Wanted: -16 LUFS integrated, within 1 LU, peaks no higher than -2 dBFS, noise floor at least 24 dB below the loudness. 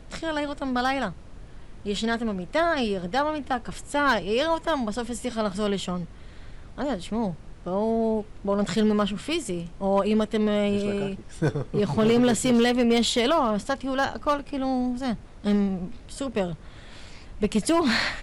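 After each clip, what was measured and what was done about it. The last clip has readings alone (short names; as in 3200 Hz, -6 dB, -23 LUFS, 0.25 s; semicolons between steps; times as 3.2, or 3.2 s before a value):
clipped 0.8%; flat tops at -15.0 dBFS; noise floor -45 dBFS; noise floor target -50 dBFS; loudness -25.5 LUFS; peak -15.0 dBFS; loudness target -16.0 LUFS
-> clip repair -15 dBFS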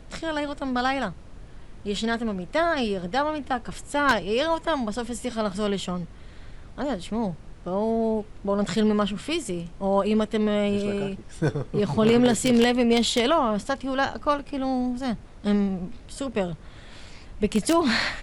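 clipped 0.0%; noise floor -45 dBFS; noise floor target -49 dBFS
-> noise print and reduce 6 dB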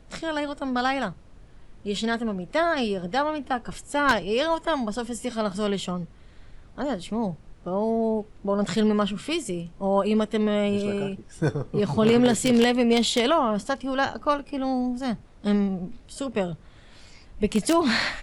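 noise floor -50 dBFS; loudness -25.0 LUFS; peak -6.0 dBFS; loudness target -16.0 LUFS
-> gain +9 dB; limiter -2 dBFS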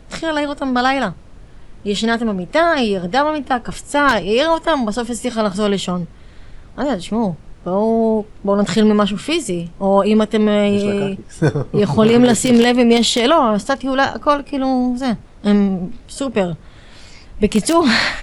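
loudness -16.5 LUFS; peak -2.0 dBFS; noise floor -41 dBFS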